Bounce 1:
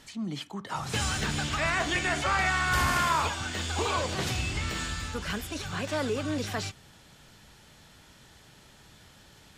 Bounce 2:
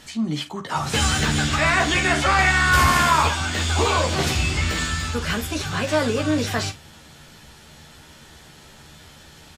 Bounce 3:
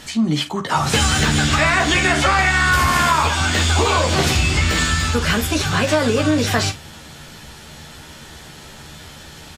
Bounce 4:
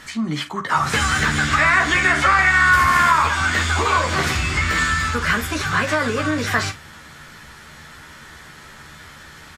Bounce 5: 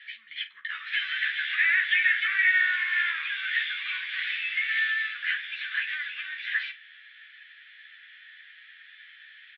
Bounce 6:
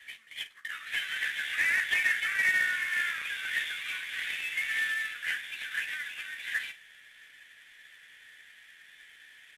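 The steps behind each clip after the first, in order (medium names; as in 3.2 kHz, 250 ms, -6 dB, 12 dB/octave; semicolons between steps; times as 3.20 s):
early reflections 13 ms -4 dB, 50 ms -12.5 dB; trim +7 dB
compression, threshold -20 dBFS, peak gain reduction 8 dB; trim +7.5 dB
high-order bell 1.5 kHz +8.5 dB 1.3 oct; trim -5.5 dB
elliptic band-pass 1.7–3.5 kHz, stop band 50 dB; trim -4 dB
CVSD coder 64 kbps; trim -4 dB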